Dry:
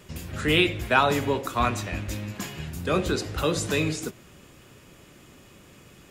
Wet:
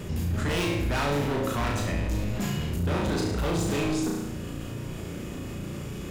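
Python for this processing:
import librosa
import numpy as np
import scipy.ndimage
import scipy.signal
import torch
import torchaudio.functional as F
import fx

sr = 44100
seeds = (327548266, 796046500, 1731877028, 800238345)

p1 = fx.low_shelf(x, sr, hz=470.0, db=11.0)
p2 = np.clip(10.0 ** (23.0 / 20.0) * p1, -1.0, 1.0) / 10.0 ** (23.0 / 20.0)
p3 = p2 + fx.room_flutter(p2, sr, wall_m=6.0, rt60_s=0.68, dry=0)
p4 = fx.env_flatten(p3, sr, amount_pct=50)
y = p4 * librosa.db_to_amplitude(-5.5)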